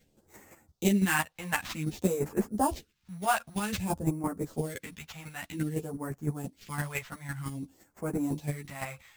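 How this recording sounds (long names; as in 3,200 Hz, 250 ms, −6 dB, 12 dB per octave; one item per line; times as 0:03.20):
aliases and images of a low sample rate 10,000 Hz, jitter 0%
phaser sweep stages 2, 0.53 Hz, lowest notch 290–3,300 Hz
chopped level 5.9 Hz, depth 60%, duty 15%
a shimmering, thickened sound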